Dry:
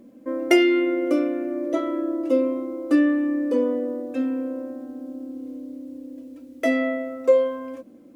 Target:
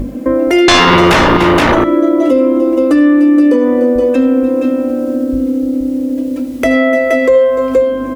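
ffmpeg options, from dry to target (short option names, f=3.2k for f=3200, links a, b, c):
-filter_complex "[0:a]asettb=1/sr,asplit=3[a][b][c];[a]atrim=end=0.684[d];[b]atrim=start=0.68:end=1.37,asetpts=PTS-STARTPTS,afade=t=in:d=0.004:c=qsin,afade=t=out:st=0.686:d=0.004:c=qsin,aeval=exprs='0.316*sin(PI/2*6.31*val(0)/0.316)':c=same[e];[c]atrim=start=1.366[f];[d][e]acrossfade=d=0.004:c1=hsin:c2=qsin[g];[g][f]acrossfade=d=0.004:c1=qsin:c2=hsin,aeval=exprs='val(0)+0.0112*(sin(2*PI*50*n/s)+sin(2*PI*2*50*n/s)/2+sin(2*PI*3*50*n/s)/3+sin(2*PI*4*50*n/s)/4+sin(2*PI*5*50*n/s)/5)':c=same,asettb=1/sr,asplit=3[h][i][j];[h]atrim=end=3.954[k];[i]atrim=start=3.95:end=5.33,asetpts=PTS-STARTPTS,afade=t=in:d=0.004:c=qsin,afade=t=out:st=1.376:d=0.004:c=qsin,highpass=54[l];[j]atrim=start=5.326[m];[k][l]acrossfade=d=0.004:c1=hsin:c2=qsin[n];[n][m]acrossfade=d=0.004:c1=qsin:c2=hsin,asplit=2[o][p];[p]aecho=0:1:74|296|472:0.224|0.188|0.355[q];[o][q]amix=inputs=2:normalize=0,acompressor=threshold=-38dB:ratio=2.5,bandreject=f=50:t=h:w=6,bandreject=f=100:t=h:w=6,bandreject=f=150:t=h:w=6,bandreject=f=200:t=h:w=6,alimiter=level_in=26.5dB:limit=-1dB:release=50:level=0:latency=1,volume=-1dB"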